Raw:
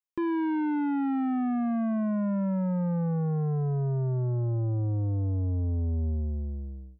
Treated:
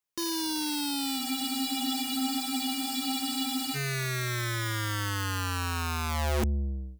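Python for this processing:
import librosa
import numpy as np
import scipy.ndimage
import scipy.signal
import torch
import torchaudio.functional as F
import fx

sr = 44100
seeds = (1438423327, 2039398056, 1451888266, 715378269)

y = (np.mod(10.0 ** (30.5 / 20.0) * x + 1.0, 2.0) - 1.0) / 10.0 ** (30.5 / 20.0)
y = fx.spec_freeze(y, sr, seeds[0], at_s=1.21, hold_s=2.53)
y = y * 10.0 ** (6.0 / 20.0)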